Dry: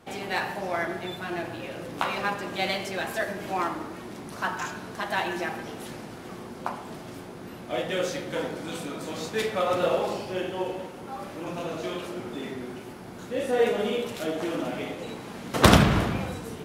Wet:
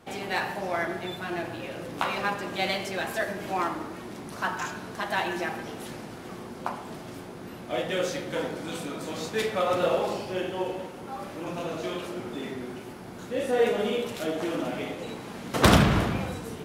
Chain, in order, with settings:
soft clipping −8 dBFS, distortion −19 dB

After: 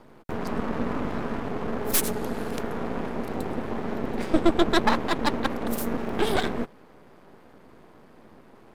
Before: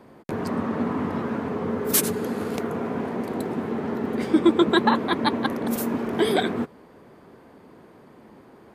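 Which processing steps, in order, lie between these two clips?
half-wave rectification
level +1.5 dB

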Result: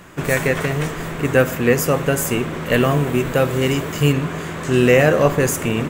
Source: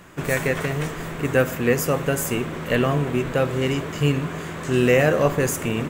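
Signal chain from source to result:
0:02.72–0:04.13: high-shelf EQ 10,000 Hz +11.5 dB
level +4 dB

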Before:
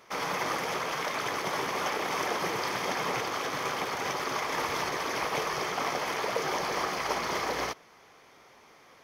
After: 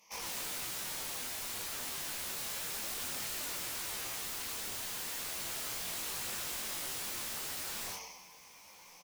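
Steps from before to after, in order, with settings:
EQ curve with evenly spaced ripples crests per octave 0.79, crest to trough 10 dB
dense smooth reverb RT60 1.1 s, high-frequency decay 0.95×, pre-delay 115 ms, DRR −4 dB
in parallel at −5 dB: soft clipping −24 dBFS, distortion −11 dB
on the sum: tilt shelving filter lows −5.5 dB, about 1,400 Hz
phaser with its sweep stopped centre 390 Hz, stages 6
wrap-around overflow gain 24 dB
on a send: single-tap delay 1,066 ms −20.5 dB
on the sum: micro pitch shift up and down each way 11 cents
level −7 dB

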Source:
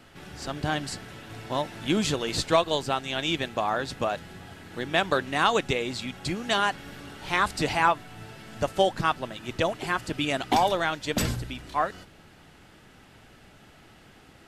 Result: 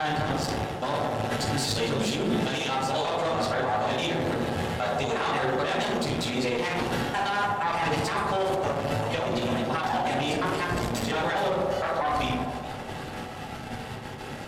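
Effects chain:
slices reordered back to front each 117 ms, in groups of 7
noise gate with hold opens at −43 dBFS
rectangular room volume 330 cubic metres, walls furnished, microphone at 6.5 metres
reversed playback
downward compressor 16 to 1, threshold −21 dBFS, peak gain reduction 18 dB
reversed playback
harmonic generator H 6 −17 dB, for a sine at −11 dBFS
speech leveller 2 s
high-pass filter 88 Hz 6 dB per octave
feedback echo with a band-pass in the loop 75 ms, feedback 79%, band-pass 590 Hz, level −5 dB
brickwall limiter −20.5 dBFS, peak gain reduction 10 dB
feedback echo with a swinging delay time 418 ms, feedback 65%, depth 142 cents, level −17 dB
level +2.5 dB

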